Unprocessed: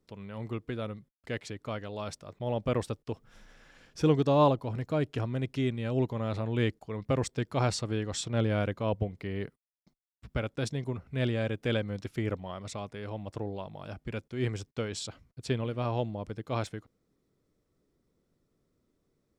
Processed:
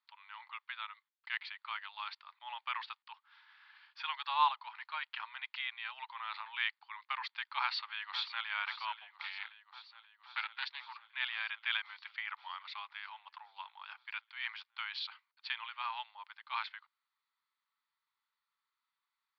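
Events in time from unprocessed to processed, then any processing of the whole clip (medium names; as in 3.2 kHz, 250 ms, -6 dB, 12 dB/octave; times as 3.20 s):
7.60–8.46 s: echo throw 530 ms, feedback 75%, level -12 dB
9.22–11.08 s: loudspeaker Doppler distortion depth 0.37 ms
whole clip: Chebyshev band-pass 880–4600 Hz, order 5; dynamic bell 2.3 kHz, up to +5 dB, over -56 dBFS, Q 1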